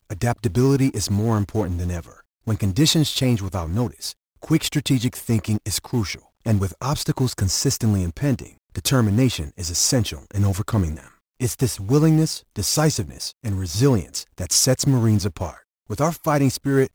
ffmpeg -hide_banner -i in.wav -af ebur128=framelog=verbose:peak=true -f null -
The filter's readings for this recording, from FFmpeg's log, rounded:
Integrated loudness:
  I:         -21.4 LUFS
  Threshold: -31.8 LUFS
Loudness range:
  LRA:         2.4 LU
  Threshold: -41.8 LUFS
  LRA low:   -23.1 LUFS
  LRA high:  -20.7 LUFS
True peak:
  Peak:       -4.9 dBFS